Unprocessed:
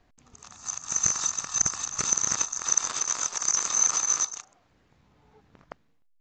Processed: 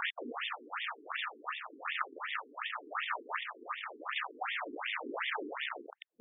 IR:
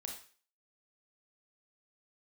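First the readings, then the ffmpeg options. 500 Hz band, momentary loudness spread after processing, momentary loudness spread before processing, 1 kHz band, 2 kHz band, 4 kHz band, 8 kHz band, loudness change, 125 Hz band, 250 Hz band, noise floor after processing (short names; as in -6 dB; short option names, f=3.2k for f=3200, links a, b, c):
+2.5 dB, 5 LU, 8 LU, -0.5 dB, +4.5 dB, -4.5 dB, under -40 dB, -14.0 dB, under -30 dB, -0.5 dB, -59 dBFS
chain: -filter_complex "[0:a]aeval=exprs='val(0)+0.5*0.0891*sgn(val(0))':c=same,tiltshelf=f=970:g=-5,asplit=2[a][b];[b]alimiter=limit=-11dB:level=0:latency=1:release=48,volume=-1.5dB[c];[a][c]amix=inputs=2:normalize=0,volume=4dB,asoftclip=hard,volume=-4dB,tremolo=f=0.96:d=0.35,afftfilt=real='re*between(b*sr/1024,310*pow(2600/310,0.5+0.5*sin(2*PI*2.7*pts/sr))/1.41,310*pow(2600/310,0.5+0.5*sin(2*PI*2.7*pts/sr))*1.41)':imag='im*between(b*sr/1024,310*pow(2600/310,0.5+0.5*sin(2*PI*2.7*pts/sr))/1.41,310*pow(2600/310,0.5+0.5*sin(2*PI*2.7*pts/sr))*1.41)':win_size=1024:overlap=0.75,volume=-5.5dB"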